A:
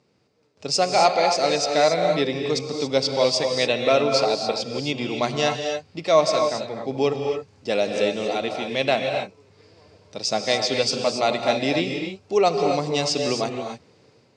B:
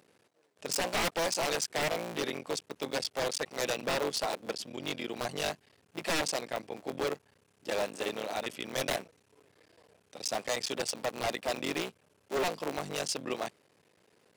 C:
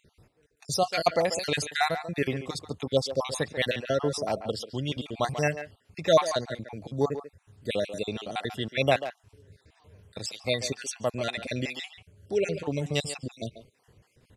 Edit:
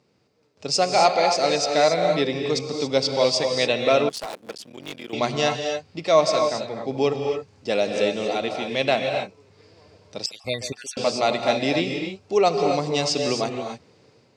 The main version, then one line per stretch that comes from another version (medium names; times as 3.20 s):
A
4.09–5.13 s: from B
10.26–10.97 s: from C